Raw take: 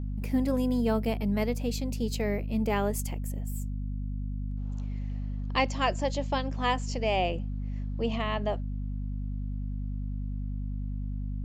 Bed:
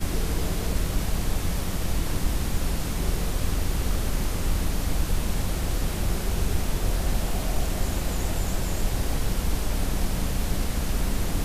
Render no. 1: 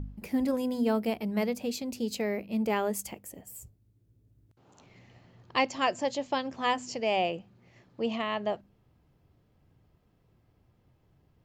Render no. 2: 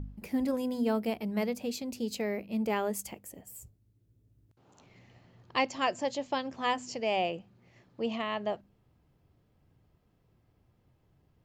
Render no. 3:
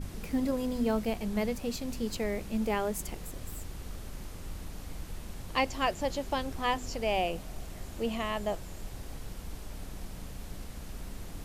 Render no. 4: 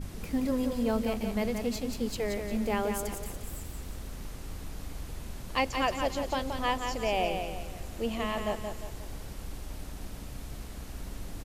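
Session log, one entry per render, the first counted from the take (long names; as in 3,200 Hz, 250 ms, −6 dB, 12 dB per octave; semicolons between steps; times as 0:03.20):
hum removal 50 Hz, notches 5
level −2 dB
mix in bed −16 dB
repeating echo 176 ms, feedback 41%, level −6 dB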